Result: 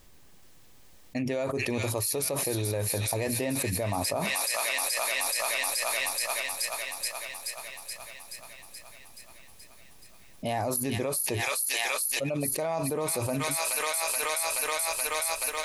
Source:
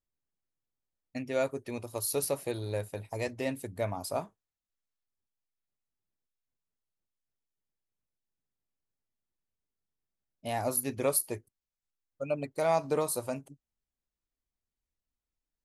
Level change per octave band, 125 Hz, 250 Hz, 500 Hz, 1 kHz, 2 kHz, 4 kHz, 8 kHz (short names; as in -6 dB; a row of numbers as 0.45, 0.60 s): +7.0, +5.5, +2.0, +5.5, +14.5, +15.5, +10.5 dB